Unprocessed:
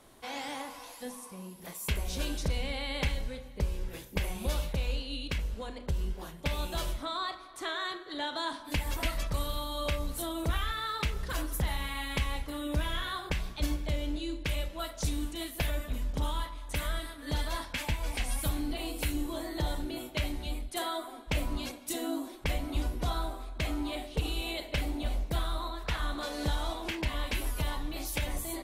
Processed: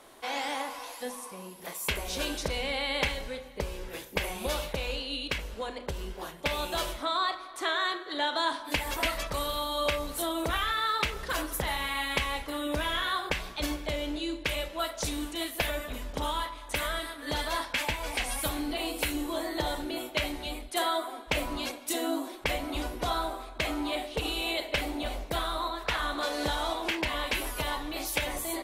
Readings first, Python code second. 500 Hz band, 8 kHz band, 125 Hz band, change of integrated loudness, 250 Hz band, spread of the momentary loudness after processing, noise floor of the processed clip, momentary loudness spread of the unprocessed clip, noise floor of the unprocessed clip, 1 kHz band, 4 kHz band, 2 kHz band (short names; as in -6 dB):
+5.5 dB, +3.5 dB, -6.0 dB, +3.5 dB, +1.5 dB, 6 LU, -45 dBFS, 5 LU, -48 dBFS, +6.5 dB, +5.5 dB, +6.5 dB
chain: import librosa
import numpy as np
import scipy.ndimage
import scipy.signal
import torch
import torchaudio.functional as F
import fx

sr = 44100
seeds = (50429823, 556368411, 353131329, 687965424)

y = fx.bass_treble(x, sr, bass_db=-13, treble_db=-3)
y = F.gain(torch.from_numpy(y), 6.5).numpy()